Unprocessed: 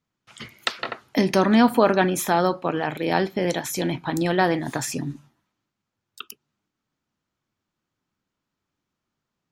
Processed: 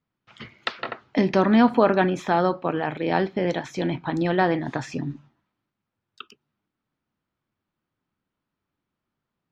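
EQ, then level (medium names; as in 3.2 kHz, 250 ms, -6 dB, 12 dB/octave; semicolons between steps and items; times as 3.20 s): distance through air 170 m; treble shelf 11 kHz -8 dB; 0.0 dB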